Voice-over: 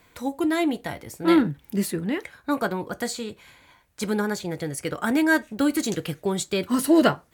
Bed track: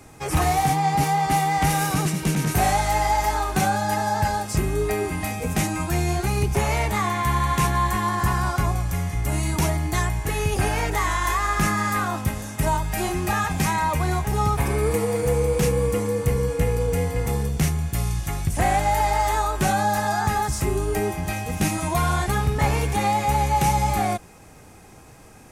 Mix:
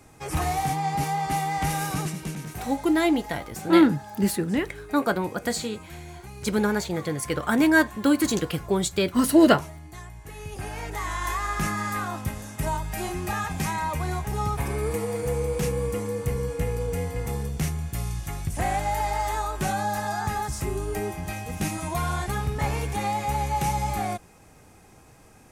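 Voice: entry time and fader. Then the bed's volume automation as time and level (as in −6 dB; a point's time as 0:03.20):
2.45 s, +1.5 dB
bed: 0:02.01 −5.5 dB
0:02.77 −18.5 dB
0:10.08 −18.5 dB
0:11.25 −5.5 dB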